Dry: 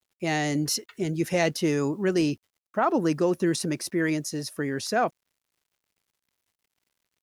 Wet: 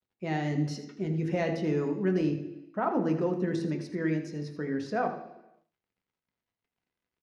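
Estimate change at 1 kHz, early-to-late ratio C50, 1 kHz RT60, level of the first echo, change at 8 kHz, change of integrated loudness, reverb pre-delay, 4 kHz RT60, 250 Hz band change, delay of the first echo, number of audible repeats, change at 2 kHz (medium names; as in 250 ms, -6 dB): -5.0 dB, 8.0 dB, 0.90 s, -12.0 dB, under -15 dB, -4.5 dB, 3 ms, 0.95 s, -3.5 dB, 81 ms, 1, -8.0 dB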